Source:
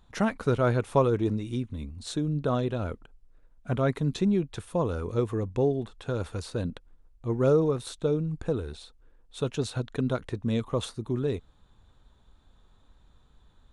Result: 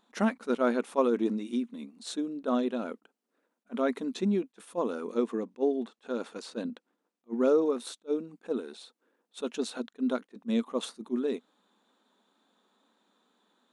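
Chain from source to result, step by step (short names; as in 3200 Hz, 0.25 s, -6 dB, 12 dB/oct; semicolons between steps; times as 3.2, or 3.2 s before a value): 5.18–7.65 LPF 8700 Hz 12 dB/oct; dynamic EQ 240 Hz, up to +6 dB, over -44 dBFS, Q 6.2; brick-wall FIR high-pass 190 Hz; attack slew limiter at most 500 dB/s; gain -1.5 dB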